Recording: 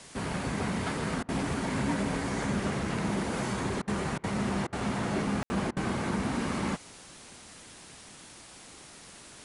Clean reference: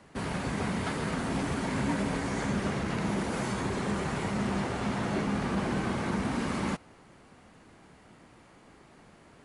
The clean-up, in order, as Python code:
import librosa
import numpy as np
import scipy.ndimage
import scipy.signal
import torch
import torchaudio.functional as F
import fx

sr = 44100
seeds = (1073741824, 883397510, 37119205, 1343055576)

y = fx.fix_ambience(x, sr, seeds[0], print_start_s=8.16, print_end_s=8.66, start_s=5.43, end_s=5.5)
y = fx.fix_interpolate(y, sr, at_s=(1.23, 3.82, 4.18, 4.67, 5.71), length_ms=55.0)
y = fx.noise_reduce(y, sr, print_start_s=8.16, print_end_s=8.66, reduce_db=6.0)